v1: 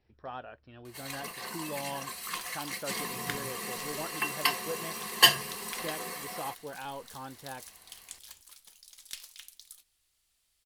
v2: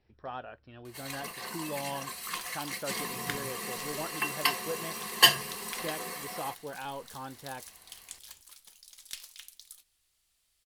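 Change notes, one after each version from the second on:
reverb: on, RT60 0.30 s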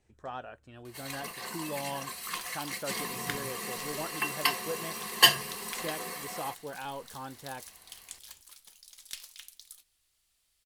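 speech: remove linear-phase brick-wall low-pass 5,700 Hz

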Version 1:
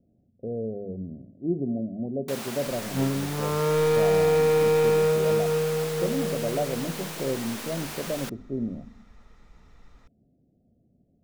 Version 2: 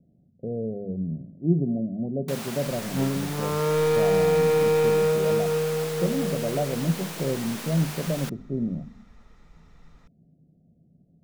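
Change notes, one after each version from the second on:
speech: add parametric band 160 Hz +13.5 dB 0.41 octaves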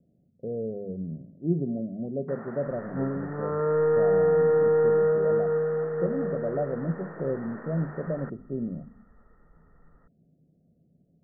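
master: add Chebyshev low-pass with heavy ripple 1,900 Hz, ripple 6 dB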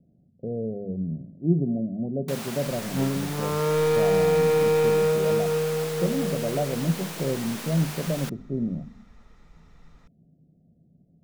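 master: remove Chebyshev low-pass with heavy ripple 1,900 Hz, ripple 6 dB

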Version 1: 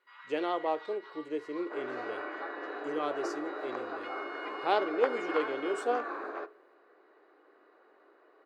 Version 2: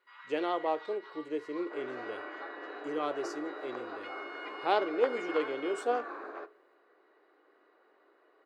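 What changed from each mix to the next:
second sound −4.0 dB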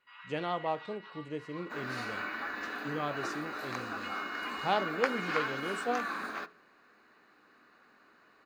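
first sound: add parametric band 2,700 Hz +11 dB 0.22 octaves
second sound: remove resonant band-pass 570 Hz, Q 1.2
master: add low shelf with overshoot 250 Hz +11.5 dB, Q 3

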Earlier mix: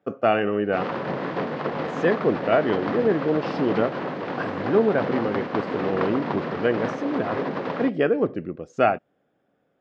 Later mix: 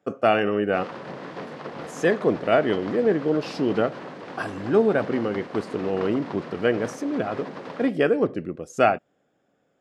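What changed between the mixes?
background −9.0 dB
master: remove high-frequency loss of the air 170 metres

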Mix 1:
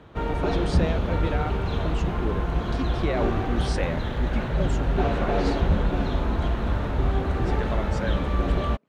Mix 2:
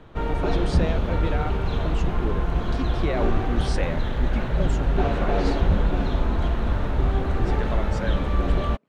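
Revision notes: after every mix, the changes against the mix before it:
background: remove high-pass filter 42 Hz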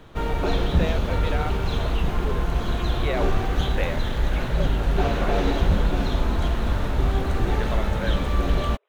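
speech: add linear-phase brick-wall band-pass 360–4,000 Hz
master: remove low-pass filter 2,300 Hz 6 dB per octave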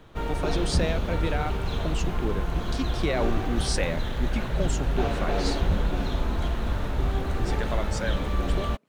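speech: remove linear-phase brick-wall band-pass 360–4,000 Hz
background −4.0 dB

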